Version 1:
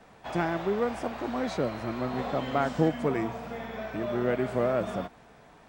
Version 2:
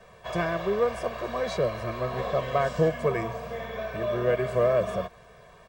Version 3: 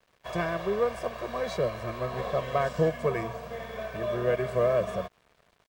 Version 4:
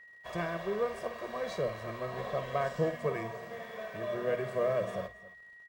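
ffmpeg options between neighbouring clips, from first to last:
-af "aecho=1:1:1.8:0.91"
-af "aeval=exprs='sgn(val(0))*max(abs(val(0))-0.00355,0)':c=same,volume=-1.5dB"
-af "aeval=exprs='val(0)+0.00501*sin(2*PI*1900*n/s)':c=same,bandreject=f=60:t=h:w=6,bandreject=f=120:t=h:w=6,aecho=1:1:53|271:0.266|0.126,volume=-5.5dB"

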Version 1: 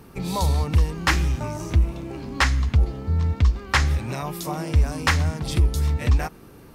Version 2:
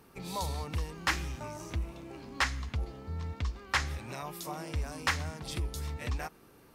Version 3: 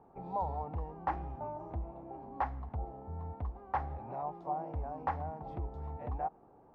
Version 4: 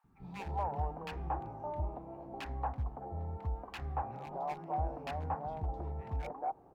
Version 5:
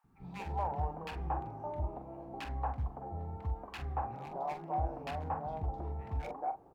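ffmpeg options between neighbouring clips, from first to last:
-af "lowshelf=f=300:g=-8.5,volume=-8dB"
-af "lowpass=f=790:t=q:w=4.9,volume=-5dB"
-filter_complex "[0:a]volume=31dB,asoftclip=hard,volume=-31dB,acrossover=split=260|1400[a][b][c];[a]adelay=40[d];[b]adelay=230[e];[d][e][c]amix=inputs=3:normalize=0,volume=2dB"
-filter_complex "[0:a]asplit=2[a][b];[b]adelay=44,volume=-9dB[c];[a][c]amix=inputs=2:normalize=0"

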